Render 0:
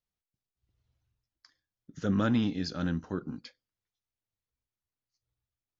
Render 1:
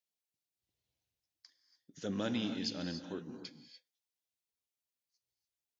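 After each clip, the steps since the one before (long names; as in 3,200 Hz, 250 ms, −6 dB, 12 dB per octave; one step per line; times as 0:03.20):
high-pass filter 700 Hz 6 dB per octave
parametric band 1,300 Hz −13 dB 0.91 octaves
reverb whose tail is shaped and stops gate 320 ms rising, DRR 8 dB
level +1 dB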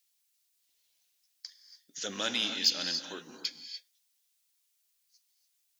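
high-pass filter 1,300 Hz 6 dB per octave
high-shelf EQ 2,500 Hz +9.5 dB
in parallel at −3 dB: soft clipping −32 dBFS, distortion −9 dB
on the sum: level +4 dB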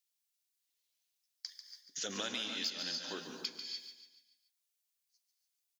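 noise gate −59 dBFS, range −11 dB
downward compressor 6 to 1, threshold −37 dBFS, peak gain reduction 15.5 dB
on a send: repeating echo 143 ms, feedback 45%, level −9 dB
on the sum: level +1 dB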